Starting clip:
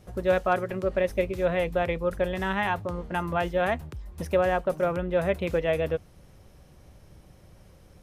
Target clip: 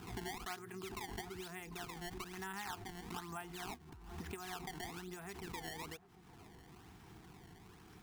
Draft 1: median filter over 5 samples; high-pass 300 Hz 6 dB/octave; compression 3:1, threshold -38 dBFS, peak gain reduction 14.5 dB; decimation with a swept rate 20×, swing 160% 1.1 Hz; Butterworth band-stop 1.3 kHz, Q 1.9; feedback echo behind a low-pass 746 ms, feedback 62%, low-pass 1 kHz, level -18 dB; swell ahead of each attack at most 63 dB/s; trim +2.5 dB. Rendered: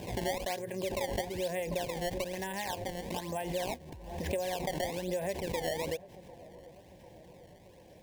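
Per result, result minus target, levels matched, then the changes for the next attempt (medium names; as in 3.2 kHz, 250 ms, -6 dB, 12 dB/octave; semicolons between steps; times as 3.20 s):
compression: peak gain reduction -8 dB; 500 Hz band +6.0 dB
change: compression 3:1, threshold -50 dBFS, peak gain reduction 22.5 dB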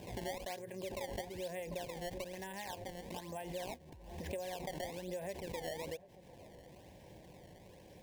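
500 Hz band +6.0 dB
change: Butterworth band-stop 560 Hz, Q 1.9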